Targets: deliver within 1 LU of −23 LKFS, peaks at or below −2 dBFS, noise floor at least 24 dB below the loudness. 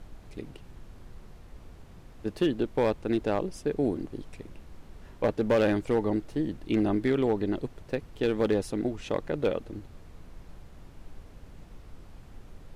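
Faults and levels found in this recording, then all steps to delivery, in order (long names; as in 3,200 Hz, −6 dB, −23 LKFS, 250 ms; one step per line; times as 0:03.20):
share of clipped samples 0.5%; peaks flattened at −17.5 dBFS; background noise floor −50 dBFS; target noise floor −53 dBFS; integrated loudness −29.0 LKFS; sample peak −17.5 dBFS; target loudness −23.0 LKFS
→ clipped peaks rebuilt −17.5 dBFS
noise reduction from a noise print 6 dB
level +6 dB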